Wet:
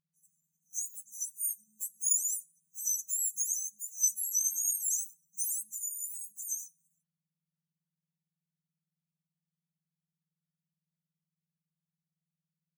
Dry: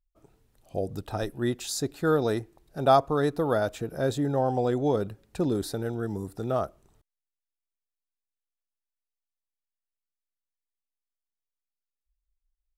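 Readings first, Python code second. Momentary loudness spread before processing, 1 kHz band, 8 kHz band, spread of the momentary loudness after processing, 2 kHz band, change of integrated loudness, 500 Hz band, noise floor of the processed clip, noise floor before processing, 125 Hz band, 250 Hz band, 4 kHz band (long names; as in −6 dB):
11 LU, below −40 dB, +14.5 dB, 11 LU, below −40 dB, −3.5 dB, below −40 dB, below −85 dBFS, below −85 dBFS, below −40 dB, below −40 dB, below −40 dB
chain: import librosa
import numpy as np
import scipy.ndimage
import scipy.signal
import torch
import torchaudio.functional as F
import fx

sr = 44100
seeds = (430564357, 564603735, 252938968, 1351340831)

y = fx.octave_mirror(x, sr, pivot_hz=1800.0)
y = fx.brickwall_bandstop(y, sr, low_hz=180.0, high_hz=5900.0)
y = fx.band_shelf(y, sr, hz=3500.0, db=9.5, octaves=1.7)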